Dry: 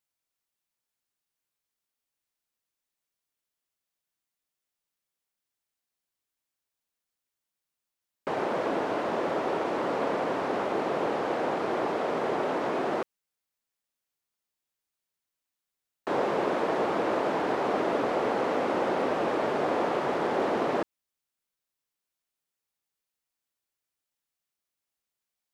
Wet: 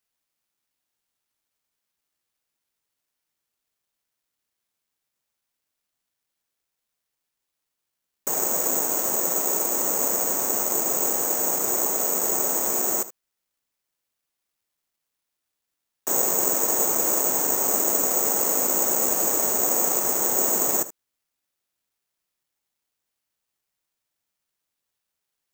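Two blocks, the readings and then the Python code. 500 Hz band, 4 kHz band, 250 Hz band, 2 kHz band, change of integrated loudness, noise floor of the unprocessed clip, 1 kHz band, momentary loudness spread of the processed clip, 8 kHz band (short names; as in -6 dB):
-3.0 dB, +4.0 dB, -3.0 dB, -3.0 dB, +8.0 dB, under -85 dBFS, -3.0 dB, 3 LU, n/a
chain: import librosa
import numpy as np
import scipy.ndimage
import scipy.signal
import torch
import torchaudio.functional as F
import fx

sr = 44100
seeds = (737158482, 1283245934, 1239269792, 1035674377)

y = x + 10.0 ** (-15.5 / 20.0) * np.pad(x, (int(76 * sr / 1000.0), 0))[:len(x)]
y = (np.kron(y[::6], np.eye(6)[0]) * 6)[:len(y)]
y = y * 10.0 ** (-3.0 / 20.0)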